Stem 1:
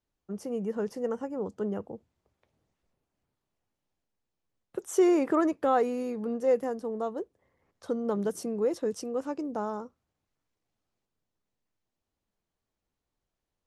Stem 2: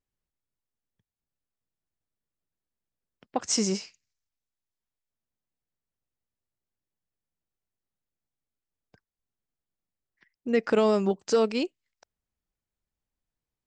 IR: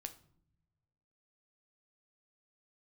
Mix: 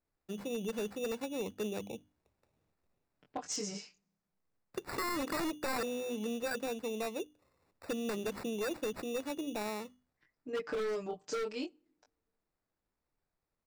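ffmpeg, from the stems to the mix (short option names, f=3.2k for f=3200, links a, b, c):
-filter_complex "[0:a]bandreject=f=50:t=h:w=6,bandreject=f=100:t=h:w=6,bandreject=f=150:t=h:w=6,bandreject=f=200:t=h:w=6,bandreject=f=250:t=h:w=6,bandreject=f=300:t=h:w=6,acrusher=samples=14:mix=1:aa=0.000001,volume=-2dB[a];[1:a]aecho=1:1:6.7:0.76,flanger=delay=19.5:depth=4.8:speed=0.66,volume=-9dB,asplit=2[b][c];[c]volume=-13dB[d];[2:a]atrim=start_sample=2205[e];[d][e]afir=irnorm=-1:irlink=0[f];[a][b][f]amix=inputs=3:normalize=0,aeval=exprs='0.0473*(abs(mod(val(0)/0.0473+3,4)-2)-1)':c=same,acompressor=threshold=-34dB:ratio=2.5"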